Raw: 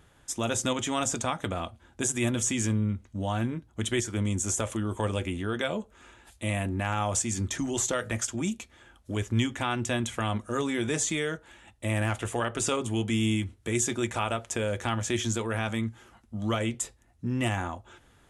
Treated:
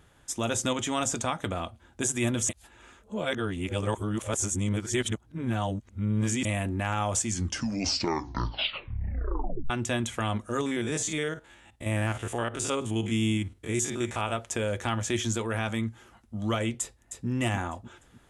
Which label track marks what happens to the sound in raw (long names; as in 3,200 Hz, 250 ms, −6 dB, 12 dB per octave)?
2.490000	6.450000	reverse
7.240000	7.240000	tape stop 2.46 s
10.610000	14.330000	spectrum averaged block by block every 50 ms
16.810000	17.270000	delay throw 300 ms, feedback 40%, level −5 dB